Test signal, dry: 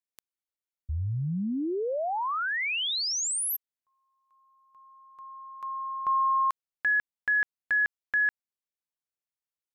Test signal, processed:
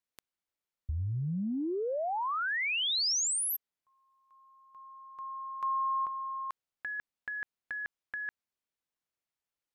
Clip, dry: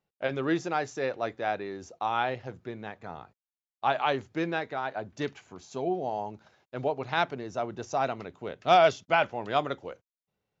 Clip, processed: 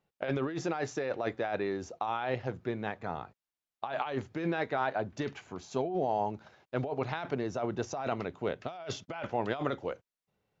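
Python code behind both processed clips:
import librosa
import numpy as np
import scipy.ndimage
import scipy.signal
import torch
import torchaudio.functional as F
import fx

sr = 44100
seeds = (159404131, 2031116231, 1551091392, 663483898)

y = fx.high_shelf(x, sr, hz=5700.0, db=-8.0)
y = fx.over_compress(y, sr, threshold_db=-33.0, ratio=-1.0)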